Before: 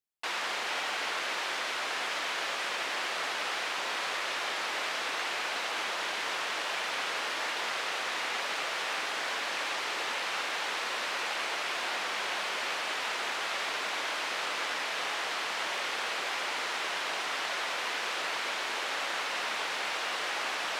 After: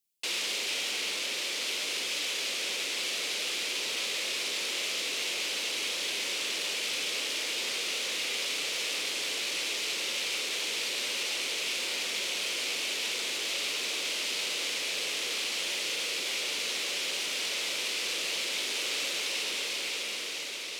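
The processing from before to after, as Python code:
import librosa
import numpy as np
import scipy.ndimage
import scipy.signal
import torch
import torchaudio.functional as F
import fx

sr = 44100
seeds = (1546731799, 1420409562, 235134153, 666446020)

p1 = fx.fade_out_tail(x, sr, length_s=1.82)
p2 = scipy.signal.sosfilt(scipy.signal.butter(2, 94.0, 'highpass', fs=sr, output='sos'), p1)
p3 = fx.high_shelf(p2, sr, hz=4200.0, db=8.5)
p4 = fx.rider(p3, sr, range_db=4, speed_s=2.0)
p5 = fx.band_shelf(p4, sr, hz=1100.0, db=-14.0, octaves=1.7)
p6 = fx.doubler(p5, sr, ms=42.0, db=-10.5)
p7 = p6 + fx.echo_alternate(p6, sr, ms=688, hz=2100.0, feedback_pct=81, wet_db=-6.5, dry=0)
p8 = fx.transformer_sat(p7, sr, knee_hz=3800.0)
y = p8 * librosa.db_to_amplitude(1.5)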